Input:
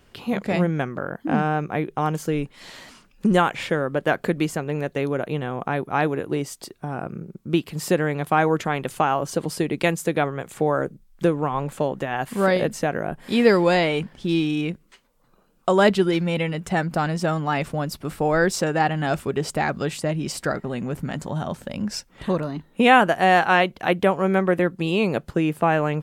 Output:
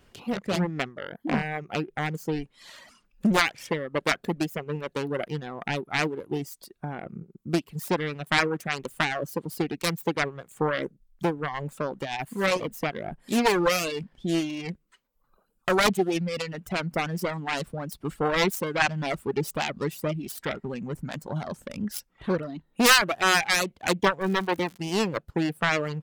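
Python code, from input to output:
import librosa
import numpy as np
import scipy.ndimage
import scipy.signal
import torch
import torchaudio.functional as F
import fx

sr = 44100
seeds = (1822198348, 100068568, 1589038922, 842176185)

y = fx.self_delay(x, sr, depth_ms=0.77)
y = fx.dereverb_blind(y, sr, rt60_s=1.3)
y = fx.dmg_crackle(y, sr, seeds[0], per_s=fx.line((24.2, 290.0), (24.76, 100.0)), level_db=-32.0, at=(24.2, 24.76), fade=0.02)
y = fx.am_noise(y, sr, seeds[1], hz=5.7, depth_pct=65)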